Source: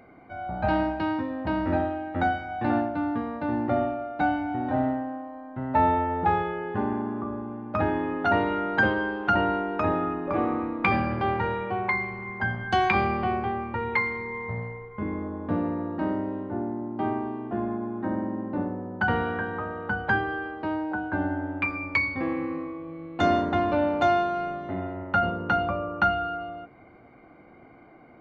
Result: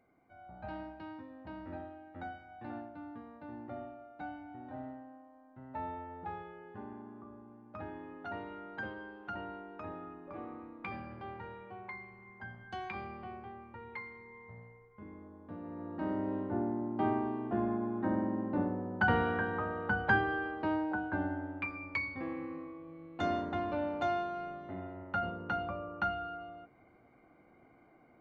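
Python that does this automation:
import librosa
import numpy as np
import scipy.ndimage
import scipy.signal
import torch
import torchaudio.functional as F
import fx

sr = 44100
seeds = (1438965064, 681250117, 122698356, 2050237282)

y = fx.gain(x, sr, db=fx.line((15.58, -19.0), (15.83, -12.0), (16.34, -3.5), (20.75, -3.5), (21.69, -11.0)))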